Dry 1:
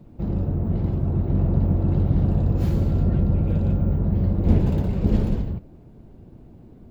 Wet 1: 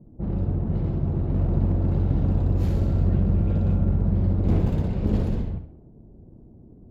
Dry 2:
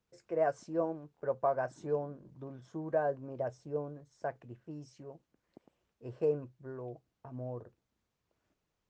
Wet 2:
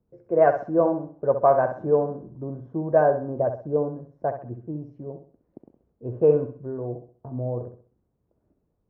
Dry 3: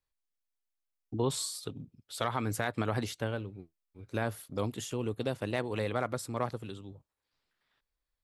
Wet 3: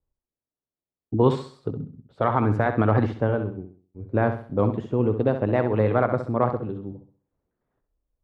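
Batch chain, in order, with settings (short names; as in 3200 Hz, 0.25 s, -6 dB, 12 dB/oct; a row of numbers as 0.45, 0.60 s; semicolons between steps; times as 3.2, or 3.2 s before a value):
one-sided clip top -18.5 dBFS; low-pass opened by the level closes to 500 Hz, open at -17 dBFS; flutter echo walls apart 11.2 m, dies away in 0.43 s; match loudness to -24 LUFS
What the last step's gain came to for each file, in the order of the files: -2.0, +12.5, +11.5 dB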